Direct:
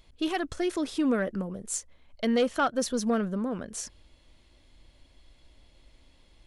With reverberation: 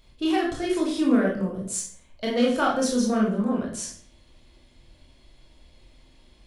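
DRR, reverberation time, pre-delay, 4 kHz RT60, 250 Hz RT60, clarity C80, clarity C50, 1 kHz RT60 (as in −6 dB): −3.0 dB, 0.45 s, 19 ms, 0.40 s, 0.60 s, 9.0 dB, 4.5 dB, 0.45 s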